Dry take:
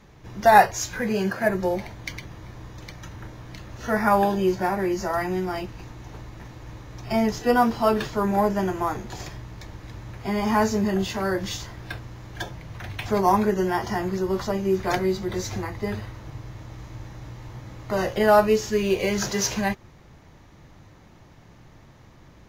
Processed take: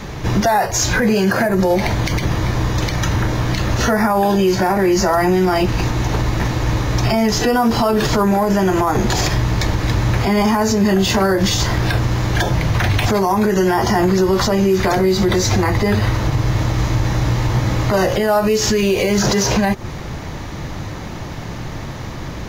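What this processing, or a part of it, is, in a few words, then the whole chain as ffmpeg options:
mastering chain: -filter_complex "[0:a]equalizer=frequency=4600:width_type=o:width=0.77:gain=2,acrossover=split=1200|6400[link_01][link_02][link_03];[link_01]acompressor=threshold=-24dB:ratio=4[link_04];[link_02]acompressor=threshold=-37dB:ratio=4[link_05];[link_03]acompressor=threshold=-44dB:ratio=4[link_06];[link_04][link_05][link_06]amix=inputs=3:normalize=0,acompressor=threshold=-32dB:ratio=2.5,alimiter=level_in=29dB:limit=-1dB:release=50:level=0:latency=1,volume=-6.5dB"

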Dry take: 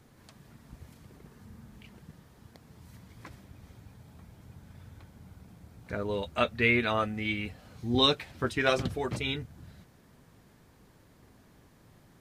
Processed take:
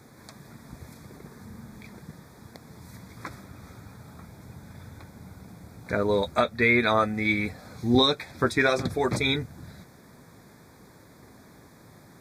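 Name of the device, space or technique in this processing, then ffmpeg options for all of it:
PA system with an anti-feedback notch: -filter_complex "[0:a]highpass=frequency=130:poles=1,asuperstop=centerf=2900:order=8:qfactor=3.3,alimiter=limit=-19dB:level=0:latency=1:release=422,asettb=1/sr,asplit=3[link_01][link_02][link_03];[link_01]atrim=end=3.174[link_04];[link_02]atrim=start=3.17:end=4.26,asetpts=PTS-STARTPTS,afade=type=in:duration=0.004:curve=qsin,afade=type=out:start_time=1.086:duration=0.004:curve=qsin,equalizer=frequency=1300:width=3.7:gain=6[link_05];[link_03]atrim=start=4.256[link_06];[link_04][link_05]acrossfade=duration=0.004:curve1=hsin:curve2=qsin[link_07];[link_07][link_06]acrossfade=duration=0.004:curve1=qsin:curve2=hsin,volume=9dB"

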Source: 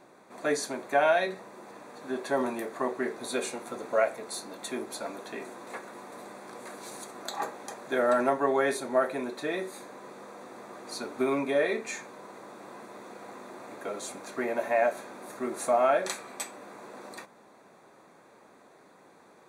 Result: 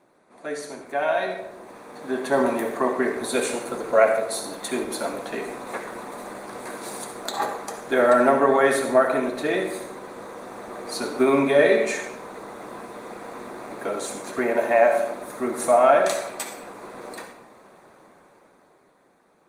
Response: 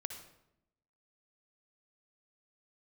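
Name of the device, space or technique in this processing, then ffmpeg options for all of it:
far-field microphone of a smart speaker: -filter_complex "[1:a]atrim=start_sample=2205[link_01];[0:a][link_01]afir=irnorm=-1:irlink=0,highpass=91,dynaudnorm=framelen=150:gausssize=21:maxgain=14dB,volume=-1.5dB" -ar 48000 -c:a libopus -b:a 32k

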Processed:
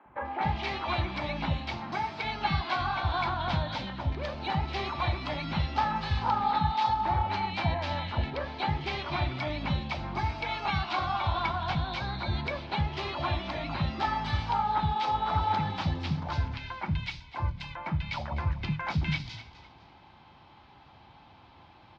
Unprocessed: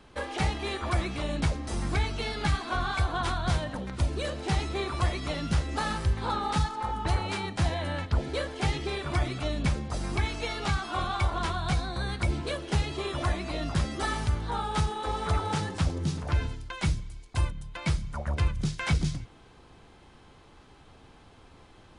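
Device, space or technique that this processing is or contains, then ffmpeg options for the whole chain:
frequency-shifting delay pedal into a guitar cabinet: -filter_complex "[0:a]lowpass=8600,equalizer=frequency=5100:width=1.6:gain=4,asettb=1/sr,asplit=3[link_01][link_02][link_03];[link_01]atrim=end=1.714[link_04];[link_02]atrim=start=1.71:end=2.19,asetpts=PTS-STARTPTS,afade=type=in:duration=0.004:curve=qsin,afade=type=out:start_time=0.476:duration=0.004:curve=qsin,highpass=210[link_05];[link_03]atrim=start=2.186[link_06];[link_04][link_05]acrossfade=duration=0.004:curve1=hsin:curve2=qsin[link_07];[link_07][link_06]acrossfade=duration=0.004:curve1=qsin:curve2=hsin,acrossover=split=280|1900[link_08][link_09][link_10];[link_08]adelay=50[link_11];[link_10]adelay=250[link_12];[link_11][link_09][link_12]amix=inputs=3:normalize=0,asplit=4[link_13][link_14][link_15][link_16];[link_14]adelay=253,afreqshift=-42,volume=-15dB[link_17];[link_15]adelay=506,afreqshift=-84,volume=-24.9dB[link_18];[link_16]adelay=759,afreqshift=-126,volume=-34.8dB[link_19];[link_13][link_17][link_18][link_19]amix=inputs=4:normalize=0,highpass=78,equalizer=frequency=450:width_type=q:width=4:gain=-10,equalizer=frequency=880:width_type=q:width=4:gain=8,equalizer=frequency=2300:width_type=q:width=4:gain=4,lowpass=frequency=4100:width=0.5412,lowpass=frequency=4100:width=1.3066"

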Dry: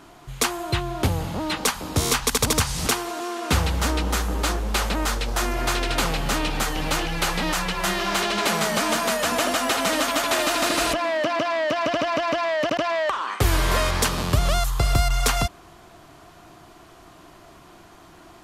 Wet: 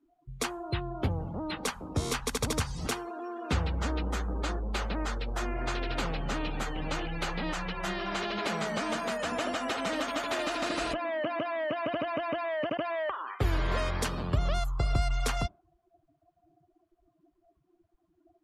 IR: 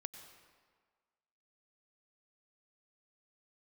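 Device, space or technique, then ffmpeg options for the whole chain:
behind a face mask: -af "highshelf=frequency=2700:gain=-5,afftdn=noise_reduction=29:noise_floor=-35,equalizer=frequency=1000:width=1.5:gain=-2.5,volume=-7dB"

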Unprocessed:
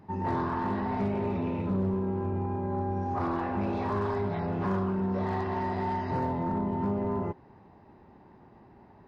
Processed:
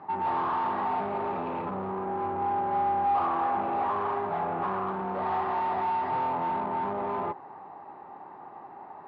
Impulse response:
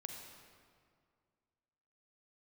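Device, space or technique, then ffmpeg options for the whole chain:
overdrive pedal into a guitar cabinet: -filter_complex "[0:a]asplit=2[link_01][link_02];[link_02]highpass=frequency=720:poles=1,volume=22dB,asoftclip=type=tanh:threshold=-21dB[link_03];[link_01][link_03]amix=inputs=2:normalize=0,lowpass=frequency=1400:poles=1,volume=-6dB,highpass=98,equalizer=frequency=110:width_type=q:width=4:gain=-5,equalizer=frequency=220:width_type=q:width=4:gain=-6,equalizer=frequency=790:width_type=q:width=4:gain=10,equalizer=frequency=1200:width_type=q:width=4:gain=9,lowpass=frequency=4300:width=0.5412,lowpass=frequency=4300:width=1.3066,asettb=1/sr,asplit=3[link_04][link_05][link_06];[link_04]atrim=end=3.254[link_07];[link_05]atrim=start=3.25:end=4.87,asetpts=PTS-STARTPTS,afade=type=in:duration=0.004:curve=qsin,afade=type=out:start_time=1.616:duration=0.004:curve=qsin,equalizer=frequency=4500:width=1.4:gain=-5[link_08];[link_06]atrim=start=4.866[link_09];[link_07][link_08]acrossfade=duration=0.004:curve1=hsin:curve2=qsin[link_10];[link_10][link_09]acrossfade=duration=0.004:curve1=qsin:curve2=hsin,volume=-5.5dB"

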